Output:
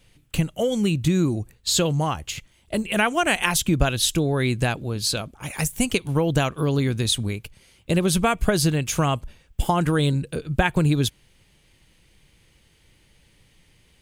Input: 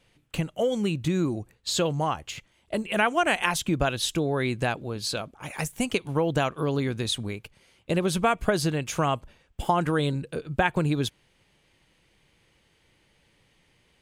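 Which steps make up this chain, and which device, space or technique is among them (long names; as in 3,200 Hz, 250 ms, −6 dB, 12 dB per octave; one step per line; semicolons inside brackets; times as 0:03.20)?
smiley-face EQ (low-shelf EQ 82 Hz +8 dB; parametric band 830 Hz −5 dB 2.8 octaves; high-shelf EQ 9,000 Hz +7 dB)
level +5.5 dB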